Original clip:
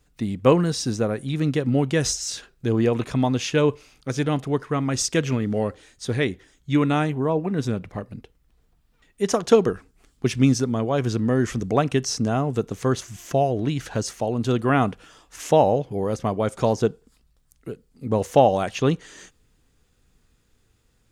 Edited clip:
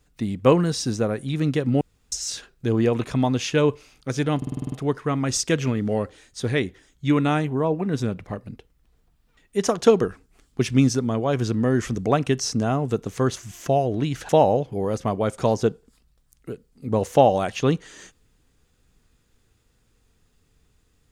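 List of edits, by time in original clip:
1.81–2.12 s: room tone
4.37 s: stutter 0.05 s, 8 plays
13.94–15.48 s: delete

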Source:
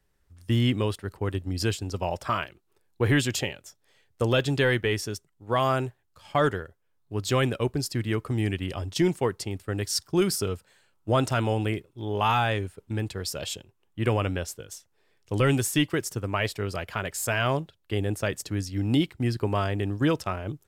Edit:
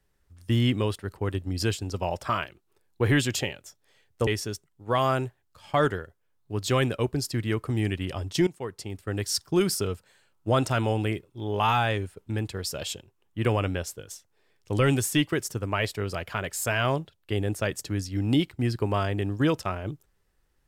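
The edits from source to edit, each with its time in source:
4.27–4.88 s: delete
9.08–9.78 s: fade in linear, from -16 dB

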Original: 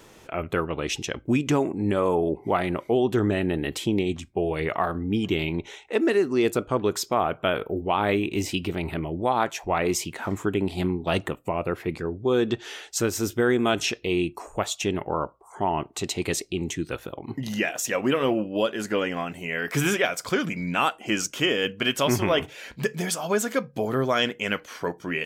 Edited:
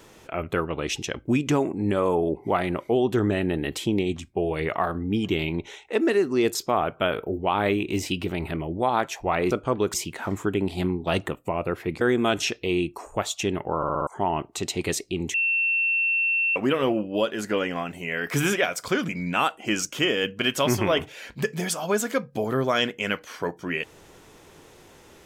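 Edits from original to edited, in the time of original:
6.55–6.98 s: move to 9.94 s
12.01–13.42 s: delete
15.18 s: stutter in place 0.06 s, 5 plays
16.75–17.97 s: bleep 2.7 kHz -20 dBFS

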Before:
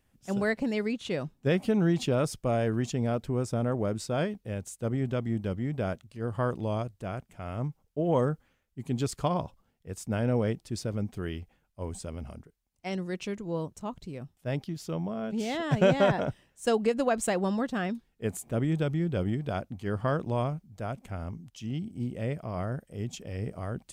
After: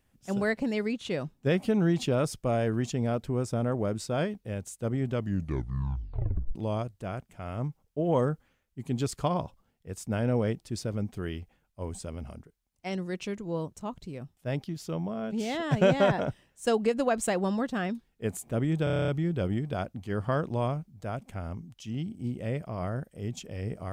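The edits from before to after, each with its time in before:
5.13 s: tape stop 1.42 s
18.84 s: stutter 0.03 s, 9 plays

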